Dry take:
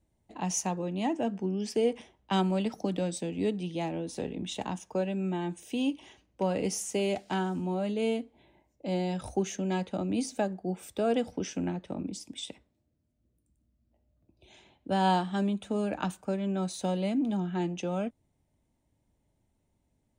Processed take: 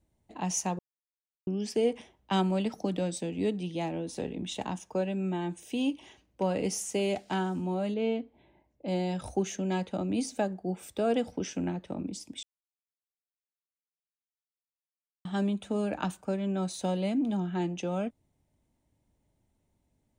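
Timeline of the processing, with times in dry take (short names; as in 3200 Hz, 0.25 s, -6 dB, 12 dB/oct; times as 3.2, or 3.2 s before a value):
0.79–1.47 mute
7.94–8.88 air absorption 190 m
12.43–15.25 mute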